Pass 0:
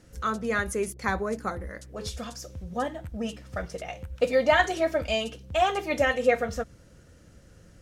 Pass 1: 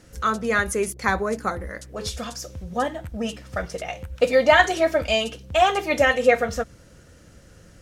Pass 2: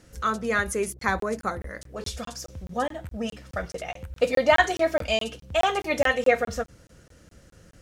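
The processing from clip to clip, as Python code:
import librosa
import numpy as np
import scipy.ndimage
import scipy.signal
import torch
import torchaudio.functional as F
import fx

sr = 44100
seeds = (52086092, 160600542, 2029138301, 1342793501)

y1 = fx.low_shelf(x, sr, hz=480.0, db=-3.5)
y1 = F.gain(torch.from_numpy(y1), 6.5).numpy()
y2 = fx.buffer_crackle(y1, sr, first_s=0.99, period_s=0.21, block=1024, kind='zero')
y2 = F.gain(torch.from_numpy(y2), -3.0).numpy()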